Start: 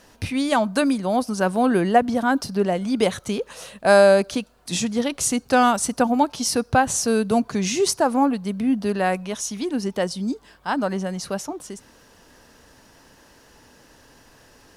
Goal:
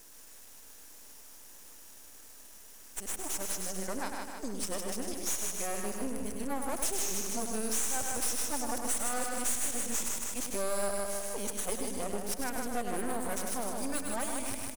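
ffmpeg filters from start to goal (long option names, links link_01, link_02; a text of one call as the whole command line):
ffmpeg -i in.wav -filter_complex "[0:a]areverse,asplit=2[link_01][link_02];[link_02]aecho=0:1:155|310|465|620|775|930:0.473|0.241|0.123|0.0628|0.032|0.0163[link_03];[link_01][link_03]amix=inputs=2:normalize=0,aexciter=amount=6.5:drive=7.6:freq=5900,aeval=exprs='max(val(0),0)':channel_layout=same,equalizer=frequency=130:width=1.9:gain=-9.5,asoftclip=type=tanh:threshold=-5.5dB,asplit=2[link_04][link_05];[link_05]aecho=0:1:100:0.447[link_06];[link_04][link_06]amix=inputs=2:normalize=0,acompressor=threshold=-23dB:ratio=2.5,volume=-7.5dB" out.wav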